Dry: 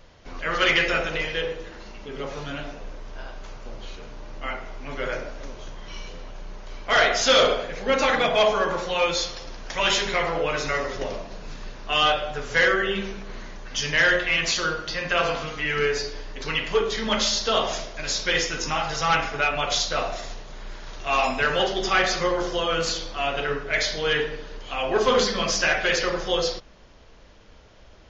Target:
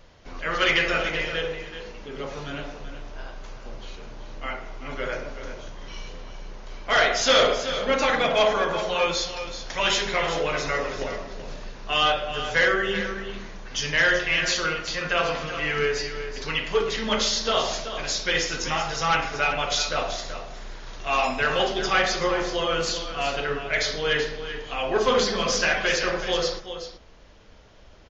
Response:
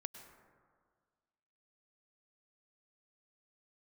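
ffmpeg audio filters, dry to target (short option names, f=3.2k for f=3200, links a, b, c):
-af "aecho=1:1:380:0.299,volume=-1dB"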